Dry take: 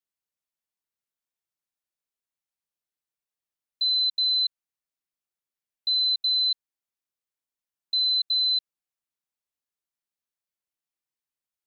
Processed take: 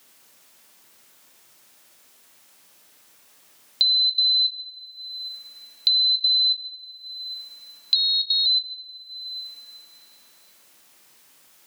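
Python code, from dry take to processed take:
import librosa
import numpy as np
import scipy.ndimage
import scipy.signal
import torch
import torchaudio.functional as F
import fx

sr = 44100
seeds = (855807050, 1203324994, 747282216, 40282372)

y = fx.rev_double_slope(x, sr, seeds[0], early_s=0.56, late_s=2.3, knee_db=-25, drr_db=9.5)
y = fx.ring_mod(y, sr, carrier_hz=250.0, at=(7.95, 8.46))
y = fx.band_squash(y, sr, depth_pct=100)
y = y * 10.0 ** (6.0 / 20.0)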